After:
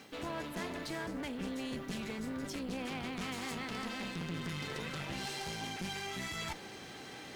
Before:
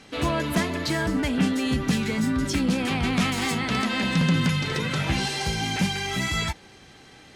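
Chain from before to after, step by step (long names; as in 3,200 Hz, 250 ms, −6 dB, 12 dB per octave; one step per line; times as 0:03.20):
high-pass filter 330 Hz 6 dB per octave
tilt shelving filter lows +3 dB, about 660 Hz
reversed playback
downward compressor 4 to 1, threshold −42 dBFS, peak gain reduction 18 dB
reversed playback
background noise blue −76 dBFS
asymmetric clip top −49 dBFS
level +4.5 dB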